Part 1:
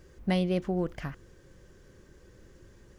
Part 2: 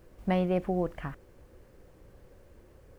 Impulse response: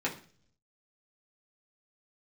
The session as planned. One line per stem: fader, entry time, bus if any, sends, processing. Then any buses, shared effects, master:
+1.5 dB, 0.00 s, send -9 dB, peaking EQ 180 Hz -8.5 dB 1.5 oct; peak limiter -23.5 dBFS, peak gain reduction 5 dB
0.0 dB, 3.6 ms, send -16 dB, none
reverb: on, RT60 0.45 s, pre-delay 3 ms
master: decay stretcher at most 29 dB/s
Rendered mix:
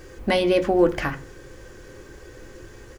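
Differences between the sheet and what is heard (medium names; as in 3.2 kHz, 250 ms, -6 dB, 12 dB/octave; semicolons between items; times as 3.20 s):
stem 1 +1.5 dB -> +11.5 dB; master: missing decay stretcher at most 29 dB/s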